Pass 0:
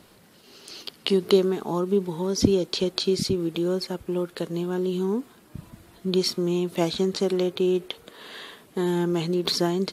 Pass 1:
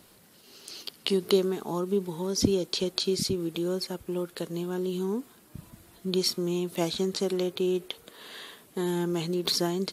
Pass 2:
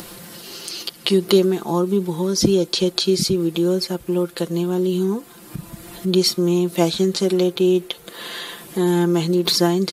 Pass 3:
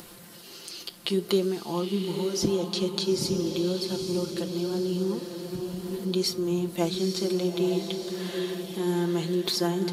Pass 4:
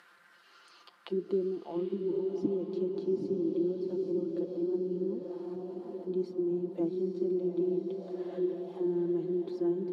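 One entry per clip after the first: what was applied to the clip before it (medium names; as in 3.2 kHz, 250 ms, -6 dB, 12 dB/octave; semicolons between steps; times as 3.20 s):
treble shelf 6 kHz +9 dB; trim -4.5 dB
comb 5.8 ms; in parallel at +1.5 dB: upward compressor, threshold -27 dBFS
flange 0.63 Hz, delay 7.8 ms, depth 6.7 ms, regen -80%; echo that smears into a reverb 906 ms, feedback 43%, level -5.5 dB; trim -5 dB
auto-wah 300–1800 Hz, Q 3.2, down, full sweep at -24.5 dBFS; echo that smears into a reverb 756 ms, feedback 48%, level -8 dB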